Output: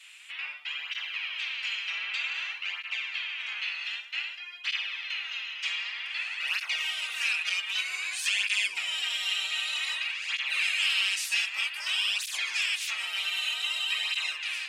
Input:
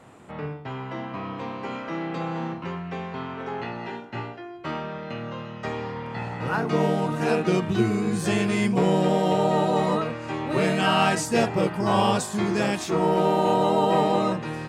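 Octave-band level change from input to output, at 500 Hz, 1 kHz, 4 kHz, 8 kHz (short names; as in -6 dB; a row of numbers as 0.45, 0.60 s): under -35 dB, -21.0 dB, +7.5 dB, +0.5 dB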